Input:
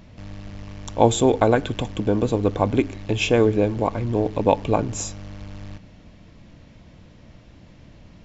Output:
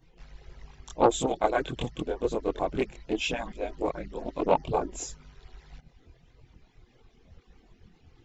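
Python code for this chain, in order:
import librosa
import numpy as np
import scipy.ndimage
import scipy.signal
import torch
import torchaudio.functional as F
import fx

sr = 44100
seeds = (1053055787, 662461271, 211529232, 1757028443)

y = fx.hpss_only(x, sr, part='percussive')
y = fx.chorus_voices(y, sr, voices=4, hz=0.84, base_ms=24, depth_ms=1.6, mix_pct=60)
y = fx.doppler_dist(y, sr, depth_ms=0.26)
y = y * librosa.db_to_amplitude(-3.0)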